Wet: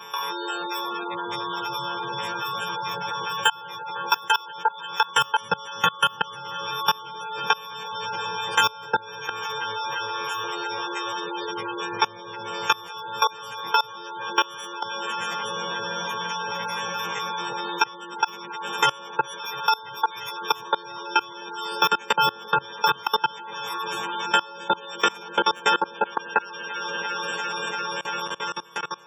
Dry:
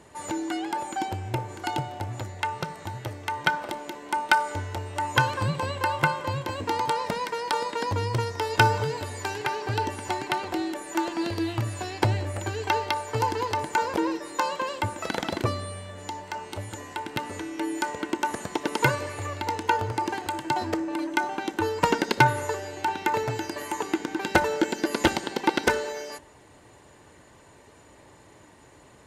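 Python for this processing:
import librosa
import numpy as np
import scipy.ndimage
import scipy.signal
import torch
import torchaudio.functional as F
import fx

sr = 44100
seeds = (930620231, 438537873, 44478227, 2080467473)

p1 = fx.freq_snap(x, sr, grid_st=4)
p2 = fx.fixed_phaser(p1, sr, hz=440.0, stages=8)
p3 = fx.sample_hold(p2, sr, seeds[0], rate_hz=4000.0, jitter_pct=0)
p4 = fx.formant_shift(p3, sr, semitones=2)
p5 = scipy.signal.sosfilt(scipy.signal.butter(2, 120.0, 'highpass', fs=sr, output='sos'), p4)
p6 = p5 + fx.echo_opening(p5, sr, ms=344, hz=750, octaves=1, feedback_pct=70, wet_db=0, dry=0)
p7 = fx.spec_gate(p6, sr, threshold_db=-20, keep='strong')
p8 = fx.level_steps(p7, sr, step_db=23)
p9 = fx.tilt_shelf(p8, sr, db=-6.5, hz=800.0)
p10 = fx.band_squash(p9, sr, depth_pct=70)
y = p10 * 10.0 ** (5.5 / 20.0)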